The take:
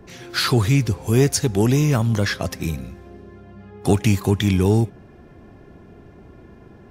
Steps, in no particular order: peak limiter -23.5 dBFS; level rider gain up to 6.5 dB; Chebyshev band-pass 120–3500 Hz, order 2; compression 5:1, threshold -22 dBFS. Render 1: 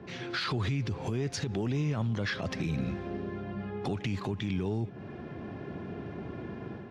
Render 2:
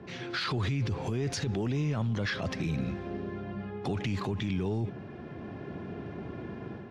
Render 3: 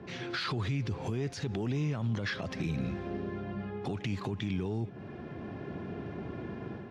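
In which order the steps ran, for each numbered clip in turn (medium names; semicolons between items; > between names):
Chebyshev band-pass > level rider > compression > peak limiter; level rider > Chebyshev band-pass > peak limiter > compression; level rider > compression > peak limiter > Chebyshev band-pass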